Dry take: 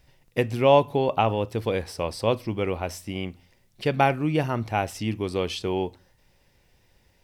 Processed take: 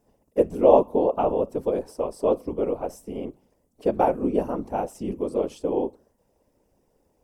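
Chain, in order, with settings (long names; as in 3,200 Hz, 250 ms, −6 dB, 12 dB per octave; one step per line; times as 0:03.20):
random phases in short frames
graphic EQ with 10 bands 125 Hz −7 dB, 250 Hz +7 dB, 500 Hz +10 dB, 1,000 Hz +4 dB, 2,000 Hz −10 dB, 4,000 Hz −11 dB, 8,000 Hz +4 dB
level −7 dB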